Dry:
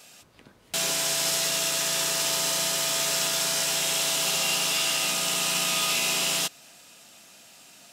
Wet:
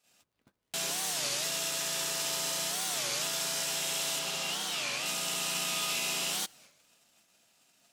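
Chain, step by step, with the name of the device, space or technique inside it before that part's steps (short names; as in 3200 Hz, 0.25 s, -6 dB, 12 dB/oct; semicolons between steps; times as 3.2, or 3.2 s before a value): warped LP (record warp 33 1/3 rpm, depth 250 cents; crackle 80/s -41 dBFS; white noise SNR 44 dB); gate -49 dBFS, range -19 dB; 4.19–5.06 high shelf 7400 Hz -7.5 dB; gain -7 dB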